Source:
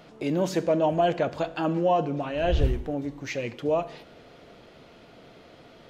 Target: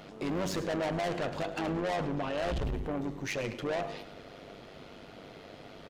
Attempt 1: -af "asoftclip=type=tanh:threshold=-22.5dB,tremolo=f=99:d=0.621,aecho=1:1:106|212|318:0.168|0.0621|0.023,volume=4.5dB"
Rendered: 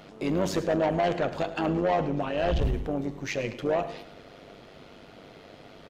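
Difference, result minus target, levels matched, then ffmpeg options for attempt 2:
soft clipping: distortion −7 dB
-af "asoftclip=type=tanh:threshold=-32dB,tremolo=f=99:d=0.621,aecho=1:1:106|212|318:0.168|0.0621|0.023,volume=4.5dB"

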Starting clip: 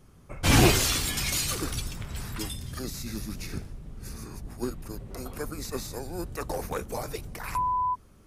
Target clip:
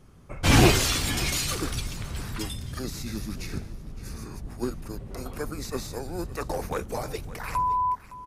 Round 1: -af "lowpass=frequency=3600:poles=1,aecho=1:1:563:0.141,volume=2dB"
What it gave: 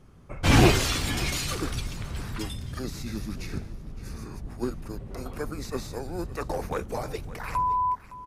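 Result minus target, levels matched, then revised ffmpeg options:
8,000 Hz band −3.0 dB
-af "lowpass=frequency=7400:poles=1,aecho=1:1:563:0.141,volume=2dB"

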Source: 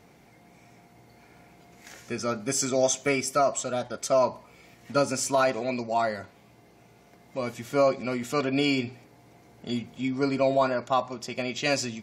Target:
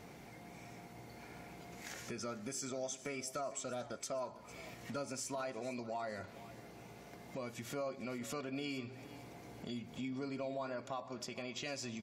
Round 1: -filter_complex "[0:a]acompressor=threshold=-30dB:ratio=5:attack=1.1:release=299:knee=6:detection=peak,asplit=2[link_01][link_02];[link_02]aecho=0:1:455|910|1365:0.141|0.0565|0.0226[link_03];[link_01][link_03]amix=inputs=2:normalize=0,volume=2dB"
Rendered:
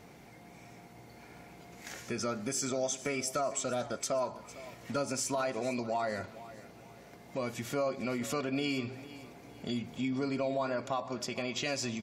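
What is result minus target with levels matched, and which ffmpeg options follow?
downward compressor: peak gain reduction −8.5 dB
-filter_complex "[0:a]acompressor=threshold=-40.5dB:ratio=5:attack=1.1:release=299:knee=6:detection=peak,asplit=2[link_01][link_02];[link_02]aecho=0:1:455|910|1365:0.141|0.0565|0.0226[link_03];[link_01][link_03]amix=inputs=2:normalize=0,volume=2dB"

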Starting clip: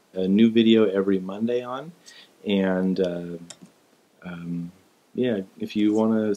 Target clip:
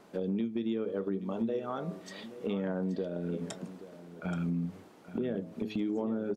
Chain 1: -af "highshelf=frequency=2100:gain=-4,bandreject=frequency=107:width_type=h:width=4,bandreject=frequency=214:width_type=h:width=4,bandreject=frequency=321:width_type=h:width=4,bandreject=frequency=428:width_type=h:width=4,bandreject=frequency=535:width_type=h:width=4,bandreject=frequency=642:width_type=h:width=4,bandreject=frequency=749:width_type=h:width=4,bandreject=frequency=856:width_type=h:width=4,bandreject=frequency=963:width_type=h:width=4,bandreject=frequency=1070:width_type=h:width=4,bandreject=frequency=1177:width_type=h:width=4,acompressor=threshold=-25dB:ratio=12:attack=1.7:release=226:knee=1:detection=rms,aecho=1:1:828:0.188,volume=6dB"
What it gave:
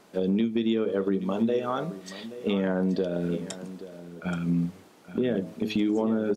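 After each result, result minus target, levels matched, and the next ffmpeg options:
downward compressor: peak gain reduction −7 dB; 4,000 Hz band +3.0 dB
-af "highshelf=frequency=2100:gain=-4,bandreject=frequency=107:width_type=h:width=4,bandreject=frequency=214:width_type=h:width=4,bandreject=frequency=321:width_type=h:width=4,bandreject=frequency=428:width_type=h:width=4,bandreject=frequency=535:width_type=h:width=4,bandreject=frequency=642:width_type=h:width=4,bandreject=frequency=749:width_type=h:width=4,bandreject=frequency=856:width_type=h:width=4,bandreject=frequency=963:width_type=h:width=4,bandreject=frequency=1070:width_type=h:width=4,bandreject=frequency=1177:width_type=h:width=4,acompressor=threshold=-33dB:ratio=12:attack=1.7:release=226:knee=1:detection=rms,aecho=1:1:828:0.188,volume=6dB"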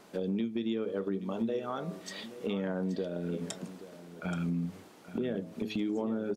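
4,000 Hz band +4.5 dB
-af "highshelf=frequency=2100:gain=-11,bandreject=frequency=107:width_type=h:width=4,bandreject=frequency=214:width_type=h:width=4,bandreject=frequency=321:width_type=h:width=4,bandreject=frequency=428:width_type=h:width=4,bandreject=frequency=535:width_type=h:width=4,bandreject=frequency=642:width_type=h:width=4,bandreject=frequency=749:width_type=h:width=4,bandreject=frequency=856:width_type=h:width=4,bandreject=frequency=963:width_type=h:width=4,bandreject=frequency=1070:width_type=h:width=4,bandreject=frequency=1177:width_type=h:width=4,acompressor=threshold=-33dB:ratio=12:attack=1.7:release=226:knee=1:detection=rms,aecho=1:1:828:0.188,volume=6dB"

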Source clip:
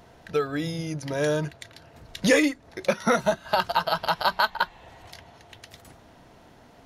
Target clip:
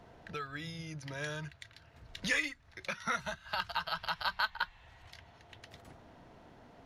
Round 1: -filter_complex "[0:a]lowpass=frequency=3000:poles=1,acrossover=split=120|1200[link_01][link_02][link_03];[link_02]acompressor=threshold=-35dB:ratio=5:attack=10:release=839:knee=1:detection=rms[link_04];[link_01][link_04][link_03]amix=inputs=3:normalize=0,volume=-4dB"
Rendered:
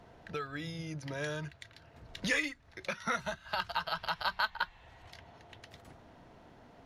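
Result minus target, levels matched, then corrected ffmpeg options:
downward compressor: peak gain reduction −5.5 dB
-filter_complex "[0:a]lowpass=frequency=3000:poles=1,acrossover=split=120|1200[link_01][link_02][link_03];[link_02]acompressor=threshold=-42dB:ratio=5:attack=10:release=839:knee=1:detection=rms[link_04];[link_01][link_04][link_03]amix=inputs=3:normalize=0,volume=-4dB"

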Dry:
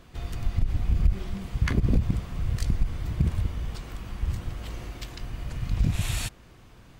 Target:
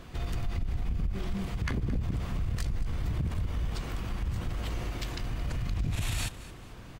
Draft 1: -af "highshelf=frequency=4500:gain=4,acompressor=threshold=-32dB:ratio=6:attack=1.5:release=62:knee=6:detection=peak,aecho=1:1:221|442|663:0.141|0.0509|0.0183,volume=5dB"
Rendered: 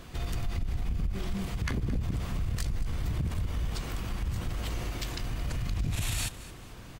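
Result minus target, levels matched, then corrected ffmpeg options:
8,000 Hz band +4.0 dB
-af "highshelf=frequency=4500:gain=-2.5,acompressor=threshold=-32dB:ratio=6:attack=1.5:release=62:knee=6:detection=peak,aecho=1:1:221|442|663:0.141|0.0509|0.0183,volume=5dB"

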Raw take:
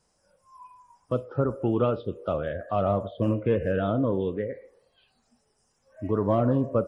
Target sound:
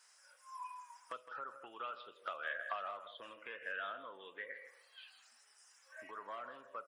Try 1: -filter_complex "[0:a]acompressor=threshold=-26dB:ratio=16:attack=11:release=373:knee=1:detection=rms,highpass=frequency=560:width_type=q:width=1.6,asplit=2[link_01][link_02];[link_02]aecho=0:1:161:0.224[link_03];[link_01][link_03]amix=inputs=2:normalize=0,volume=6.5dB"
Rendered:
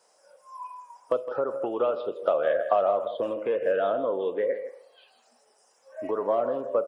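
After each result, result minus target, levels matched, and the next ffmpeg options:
2,000 Hz band −16.0 dB; downward compressor: peak gain reduction −6.5 dB
-filter_complex "[0:a]acompressor=threshold=-26dB:ratio=16:attack=11:release=373:knee=1:detection=rms,highpass=frequency=1600:width_type=q:width=1.6,asplit=2[link_01][link_02];[link_02]aecho=0:1:161:0.224[link_03];[link_01][link_03]amix=inputs=2:normalize=0,volume=6.5dB"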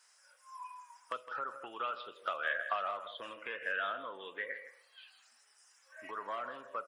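downward compressor: peak gain reduction −6.5 dB
-filter_complex "[0:a]acompressor=threshold=-33dB:ratio=16:attack=11:release=373:knee=1:detection=rms,highpass=frequency=1600:width_type=q:width=1.6,asplit=2[link_01][link_02];[link_02]aecho=0:1:161:0.224[link_03];[link_01][link_03]amix=inputs=2:normalize=0,volume=6.5dB"

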